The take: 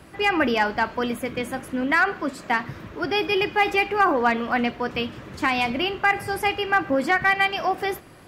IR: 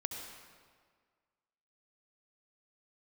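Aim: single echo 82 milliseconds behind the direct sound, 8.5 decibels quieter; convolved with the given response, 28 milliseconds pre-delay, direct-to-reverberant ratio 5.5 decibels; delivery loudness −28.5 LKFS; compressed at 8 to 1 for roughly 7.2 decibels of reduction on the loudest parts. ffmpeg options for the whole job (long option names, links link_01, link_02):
-filter_complex "[0:a]acompressor=threshold=-22dB:ratio=8,aecho=1:1:82:0.376,asplit=2[link_01][link_02];[1:a]atrim=start_sample=2205,adelay=28[link_03];[link_02][link_03]afir=irnorm=-1:irlink=0,volume=-6.5dB[link_04];[link_01][link_04]amix=inputs=2:normalize=0,volume=-2.5dB"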